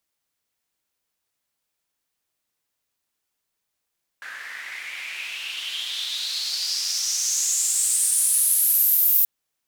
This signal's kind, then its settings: swept filtered noise white, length 5.03 s bandpass, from 1600 Hz, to 15000 Hz, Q 5.5, exponential, gain ramp +14.5 dB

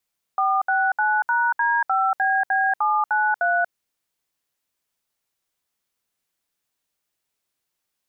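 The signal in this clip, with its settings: DTMF "469#D5BB793", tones 0.236 s, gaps 67 ms, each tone -20 dBFS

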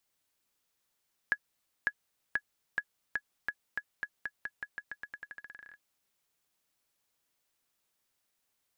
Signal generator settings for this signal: bouncing ball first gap 0.55 s, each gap 0.88, 1680 Hz, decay 59 ms -16 dBFS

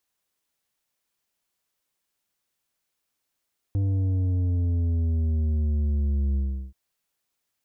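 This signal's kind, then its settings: sub drop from 99 Hz, over 2.98 s, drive 8 dB, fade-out 0.37 s, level -22 dB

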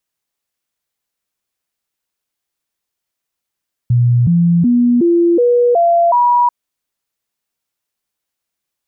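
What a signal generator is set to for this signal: stepped sine 121 Hz up, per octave 2, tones 7, 0.37 s, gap 0.00 s -8 dBFS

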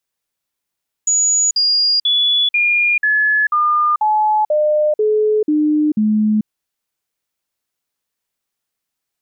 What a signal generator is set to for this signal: stepped sine 6840 Hz down, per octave 2, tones 11, 0.44 s, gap 0.05 s -11.5 dBFS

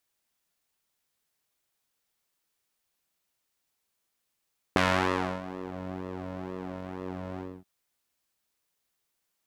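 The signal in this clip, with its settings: synth patch with pulse-width modulation F#2, filter bandpass, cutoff 230 Hz, Q 0.71, filter envelope 3 oct, filter decay 0.90 s, filter sustain 40%, attack 1.5 ms, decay 0.65 s, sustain -19 dB, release 0.25 s, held 2.63 s, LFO 2.1 Hz, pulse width 18%, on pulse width 6%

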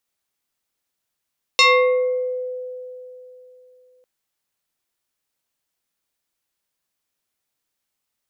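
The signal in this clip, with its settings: FM tone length 2.45 s, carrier 504 Hz, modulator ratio 3.18, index 3.2, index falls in 0.93 s exponential, decay 3.25 s, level -9 dB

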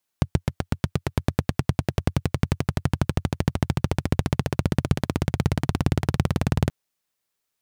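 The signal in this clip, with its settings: single-cylinder engine model, changing speed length 6.48 s, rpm 900, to 2300, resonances 90/130 Hz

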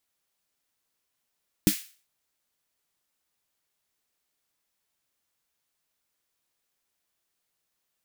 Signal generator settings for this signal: snare drum length 0.40 s, tones 200 Hz, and 300 Hz, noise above 1800 Hz, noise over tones -9 dB, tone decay 0.09 s, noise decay 0.40 s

